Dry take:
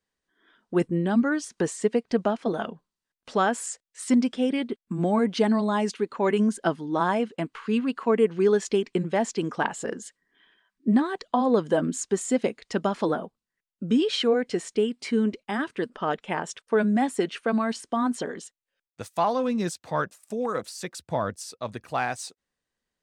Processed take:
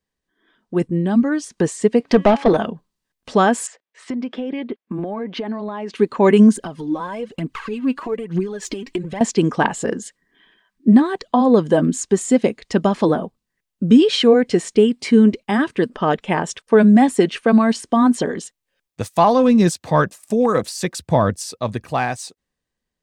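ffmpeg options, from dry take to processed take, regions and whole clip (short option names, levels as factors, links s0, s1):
-filter_complex "[0:a]asettb=1/sr,asplit=3[s0][s1][s2];[s0]atrim=end=2.004[s3];[s1]atrim=start=2:end=2.57,asetpts=PTS-STARTPTS,afade=t=in:d=0.004:c=qsin,afade=t=out:st=0.566:d=0.004:c=qsin,bandreject=f=279.3:t=h:w=4,bandreject=f=558.6:t=h:w=4,bandreject=f=837.9:t=h:w=4,bandreject=f=1117.2:t=h:w=4,bandreject=f=1396.5:t=h:w=4,bandreject=f=1675.8:t=h:w=4,bandreject=f=1955.1:t=h:w=4,bandreject=f=2234.4:t=h:w=4,bandreject=f=2513.7:t=h:w=4,bandreject=f=2793:t=h:w=4,bandreject=f=3072.3:t=h:w=4,bandreject=f=3351.6:t=h:w=4,bandreject=f=3630.9:t=h:w=4,asplit=2[s4][s5];[s5]highpass=f=720:p=1,volume=7.94,asoftclip=type=tanh:threshold=0.266[s6];[s4][s6]amix=inputs=2:normalize=0,lowpass=f=2800:p=1,volume=0.501[s7];[s2]atrim=start=2.566[s8];[s3][s7]acrossfade=d=0.004:c1=hsin:c2=qsin[s9];[s9][s8]acrossfade=d=0.004:c1=qsin:c2=hsin,asettb=1/sr,asplit=3[s10][s11][s12];[s10]atrim=end=3.674[s13];[s11]atrim=start=3.67:end=5.94,asetpts=PTS-STARTPTS,afade=t=in:d=0.004:c=qsin,afade=t=out:st=2.266:d=0.004:c=qsin,highpass=310,lowpass=2600,acompressor=threshold=0.0224:ratio=10:attack=3.2:release=140:knee=1:detection=peak[s14];[s12]atrim=start=5.936[s15];[s13][s14]acrossfade=d=0.004:c1=hsin:c2=qsin[s16];[s16][s15]acrossfade=d=0.004:c1=qsin:c2=hsin,asettb=1/sr,asplit=3[s17][s18][s19];[s17]atrim=end=6.564[s20];[s18]atrim=start=6.56:end=9.21,asetpts=PTS-STARTPTS,afade=t=in:d=0.004:c=qsin,afade=t=out:st=2.646:d=0.004:c=qsin,acompressor=threshold=0.0158:ratio=5:attack=3.2:release=140:knee=1:detection=peak,aphaser=in_gain=1:out_gain=1:delay=4.1:decay=0.62:speed=1.1:type=triangular[s21];[s19]atrim=start=9.206[s22];[s20][s21]acrossfade=d=0.004:c1=hsin:c2=qsin[s23];[s23][s22]acrossfade=d=0.004:c1=qsin:c2=hsin,lowshelf=f=260:g=7.5,bandreject=f=1400:w=11,dynaudnorm=f=330:g=9:m=3.76"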